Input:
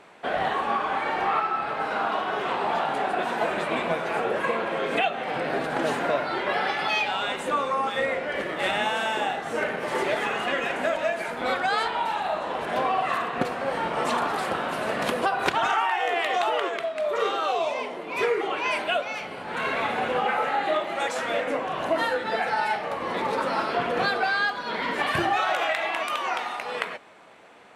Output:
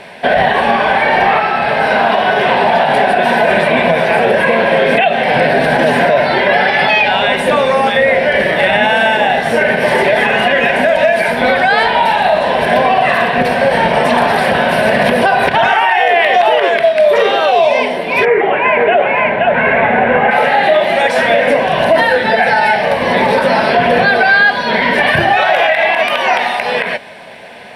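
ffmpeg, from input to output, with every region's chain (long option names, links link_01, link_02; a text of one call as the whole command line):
ffmpeg -i in.wav -filter_complex "[0:a]asettb=1/sr,asplit=3[link_01][link_02][link_03];[link_01]atrim=end=18.254[link_04];[link_02]atrim=start=18.25:end=20.31,asetpts=PTS-STARTPTS,afade=type=in:duration=0.004:curve=qsin,afade=type=out:start_time=2.056:duration=0.004:curve=qsin,lowpass=frequency=2200:width=0.5412,lowpass=frequency=2200:width=1.3066,aecho=1:1:521:0.668,atrim=end_sample=90846[link_05];[link_03]atrim=start=20.306[link_06];[link_04][link_05]acrossfade=duration=0.004:curve1=hsin:curve2=qsin[link_07];[link_07][link_06]acrossfade=duration=0.004:curve1=qsin:curve2=hsin,acrossover=split=2700[link_08][link_09];[link_09]acompressor=threshold=-44dB:ratio=4:attack=1:release=60[link_10];[link_08][link_10]amix=inputs=2:normalize=0,superequalizer=6b=0.355:7b=0.631:9b=0.631:10b=0.251:15b=0.355,alimiter=level_in=20.5dB:limit=-1dB:release=50:level=0:latency=1,volume=-1dB" out.wav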